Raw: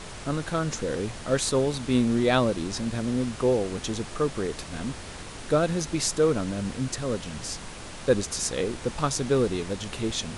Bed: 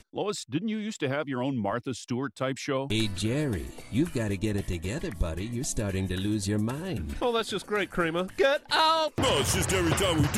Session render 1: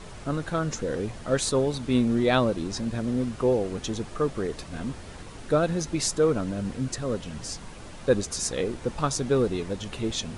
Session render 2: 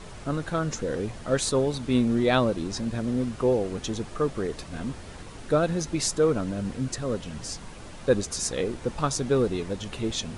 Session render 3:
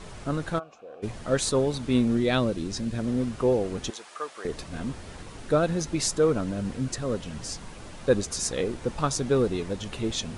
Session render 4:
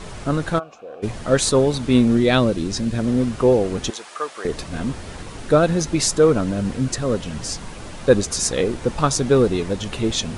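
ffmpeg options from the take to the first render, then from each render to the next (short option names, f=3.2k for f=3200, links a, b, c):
-af "afftdn=nr=7:nf=-40"
-af anull
-filter_complex "[0:a]asplit=3[a][b][c];[a]afade=t=out:st=0.58:d=0.02[d];[b]asplit=3[e][f][g];[e]bandpass=f=730:t=q:w=8,volume=0dB[h];[f]bandpass=f=1.09k:t=q:w=8,volume=-6dB[i];[g]bandpass=f=2.44k:t=q:w=8,volume=-9dB[j];[h][i][j]amix=inputs=3:normalize=0,afade=t=in:st=0.58:d=0.02,afade=t=out:st=1.02:d=0.02[k];[c]afade=t=in:st=1.02:d=0.02[l];[d][k][l]amix=inputs=3:normalize=0,asettb=1/sr,asplit=3[m][n][o];[m]atrim=end=2.174[p];[n]atrim=start=2.17:end=2.99,asetpts=PTS-STARTPTS,afade=t=in:d=0.004:c=qsin,afade=t=out:st=0.816:d=0.004:c=qsin,equalizer=f=900:w=0.94:g=-6[q];[o]atrim=start=2.986[r];[p][q]acrossfade=d=0.004:c1=hsin:c2=qsin[s];[s][r]acrossfade=d=0.004:c1=qsin:c2=hsin,asettb=1/sr,asplit=3[t][u][v];[t]atrim=end=3.904[w];[u]atrim=start=3.9:end=4.45,asetpts=PTS-STARTPTS,afade=t=in:d=0.004:c=qsin,afade=t=out:st=0.546:d=0.004:c=qsin,highpass=850[x];[v]atrim=start=4.446[y];[w][x]acrossfade=d=0.004:c1=hsin:c2=qsin[z];[z][y]acrossfade=d=0.004:c1=qsin:c2=hsin"
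-af "volume=7.5dB,alimiter=limit=-2dB:level=0:latency=1"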